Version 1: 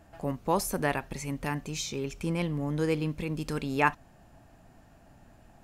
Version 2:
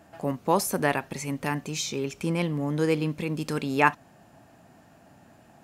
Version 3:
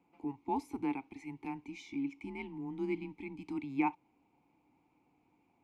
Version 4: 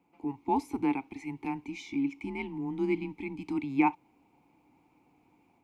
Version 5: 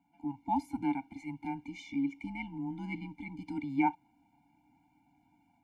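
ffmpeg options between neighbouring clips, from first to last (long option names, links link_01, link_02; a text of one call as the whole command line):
ffmpeg -i in.wav -af "highpass=130,volume=4dB" out.wav
ffmpeg -i in.wav -filter_complex "[0:a]afreqshift=-130,asplit=3[link_01][link_02][link_03];[link_01]bandpass=frequency=300:width_type=q:width=8,volume=0dB[link_04];[link_02]bandpass=frequency=870:width_type=q:width=8,volume=-6dB[link_05];[link_03]bandpass=frequency=2240:width_type=q:width=8,volume=-9dB[link_06];[link_04][link_05][link_06]amix=inputs=3:normalize=0,highshelf=frequency=8300:gain=5.5" out.wav
ffmpeg -i in.wav -af "dynaudnorm=framelen=180:gausssize=3:maxgain=5dB,volume=1.5dB" out.wav
ffmpeg -i in.wav -af "afftfilt=real='re*eq(mod(floor(b*sr/1024/340),2),0)':imag='im*eq(mod(floor(b*sr/1024/340),2),0)':win_size=1024:overlap=0.75,volume=-2dB" out.wav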